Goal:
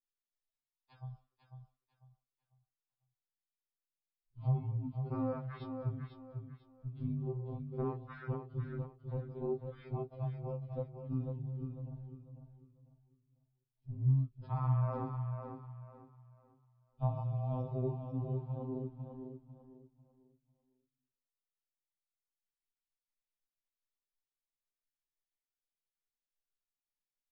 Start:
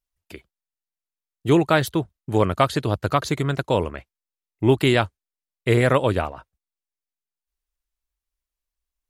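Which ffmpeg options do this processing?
-af "afwtdn=0.0251,acompressor=threshold=-33dB:ratio=4,asetrate=14685,aresample=44100,aecho=1:1:497|994|1491|1988:0.447|0.13|0.0376|0.0109,afftfilt=real='re*2.45*eq(mod(b,6),0)':imag='im*2.45*eq(mod(b,6),0)':win_size=2048:overlap=0.75"

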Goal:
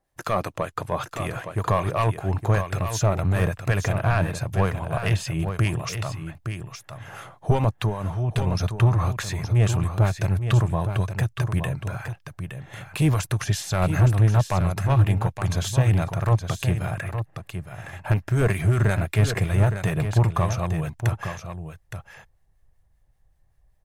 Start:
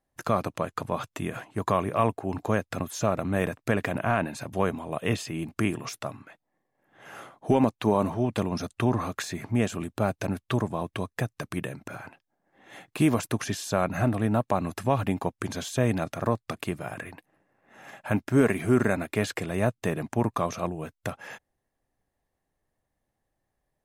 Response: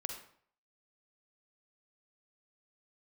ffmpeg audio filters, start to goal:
-filter_complex "[0:a]acontrast=26,equalizer=f=240:t=o:w=0.26:g=-11,asettb=1/sr,asplit=3[a][b][c];[a]atrim=end=7.844[d];[b]atrim=start=7.84:end=8.47,asetpts=PTS-STARTPTS,afade=t=in:d=0.004:c=qsin,afade=t=out:st=0.626:d=0.004:c=qsin,acompressor=threshold=-24dB:ratio=5[e];[c]atrim=start=8.466[f];[d][e]acrossfade=d=0.004:c1=hsin:c2=qsin[g];[g][f]acrossfade=d=0.004:c1=qsin:c2=hsin,asubboost=boost=8.5:cutoff=97,asoftclip=type=tanh:threshold=-12.5dB,acrossover=split=1200[h][i];[h]aeval=exprs='val(0)*(1-0.5/2+0.5/2*cos(2*PI*5.2*n/s))':c=same[j];[i]aeval=exprs='val(0)*(1-0.5/2-0.5/2*cos(2*PI*5.2*n/s))':c=same[k];[j][k]amix=inputs=2:normalize=0,asplit=2[l][m];[m]aecho=0:1:866:0.376[n];[l][n]amix=inputs=2:normalize=0,volume=1.5dB"

